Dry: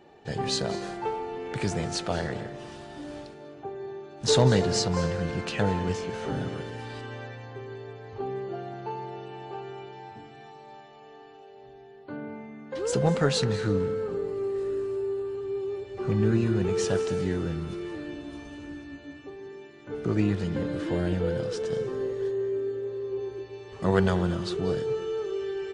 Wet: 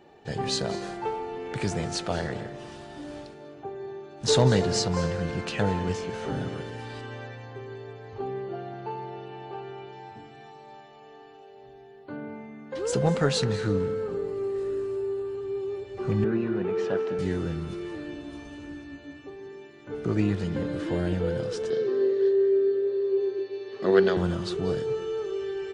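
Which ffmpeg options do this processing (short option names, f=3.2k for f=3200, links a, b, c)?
-filter_complex "[0:a]asettb=1/sr,asplit=3[a][b][c];[a]atrim=end=8.304[d];[b]atrim=start=8.3:end=9.89,asetpts=PTS-STARTPTS,afade=t=in:d=0.004:c=qsin,afade=t=out:st=1.586:d=0.004:c=qsin,lowpass=5k[e];[c]atrim=start=9.886[f];[d][e]acrossfade=d=0.004:c1=hsin:c2=qsin[g];[g][f]acrossfade=d=0.004:c1=qsin:c2=hsin,asettb=1/sr,asplit=3[h][i][j];[h]atrim=end=16.244[k];[i]atrim=start=16.24:end=17.19,asetpts=PTS-STARTPTS,afade=t=in:d=0.004:c=qsin,afade=t=out:st=0.946:d=0.004:c=qsin,highpass=210,lowpass=2.3k[l];[j]atrim=start=17.186[m];[k][l]acrossfade=d=0.004:c1=hsin:c2=qsin[n];[n][m]acrossfade=d=0.004:c1=qsin:c2=hsin,asettb=1/sr,asplit=3[o][p][q];[o]atrim=end=21.704[r];[p]atrim=start=21.7:end=24.17,asetpts=PTS-STARTPTS,afade=t=in:d=0.004:c=qsin,afade=t=out:st=2.466:d=0.004:c=qsin,highpass=f=160:w=0.5412,highpass=f=160:w=1.3066,equalizer=f=170:t=q:w=4:g=-9,equalizer=f=380:t=q:w=4:g=8,equalizer=f=930:t=q:w=4:g=-7,equalizer=f=1.7k:t=q:w=4:g=3,equalizer=f=4.2k:t=q:w=4:g=7,lowpass=f=5.5k:w=0.5412,lowpass=f=5.5k:w=1.3066[s];[q]atrim=start=24.166[t];[r][s]acrossfade=d=0.004:c1=hsin:c2=qsin[u];[u][t]acrossfade=d=0.004:c1=qsin:c2=hsin"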